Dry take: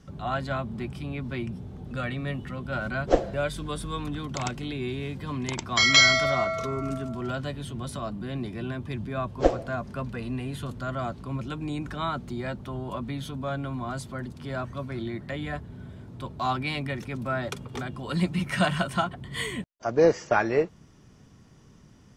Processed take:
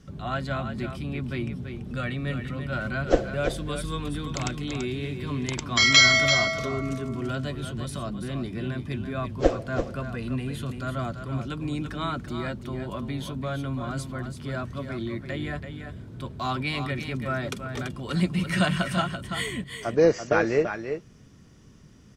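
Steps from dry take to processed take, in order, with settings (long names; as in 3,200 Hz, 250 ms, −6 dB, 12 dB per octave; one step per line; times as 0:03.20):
parametric band 850 Hz −6 dB 0.81 octaves
single-tap delay 336 ms −8 dB
level +1.5 dB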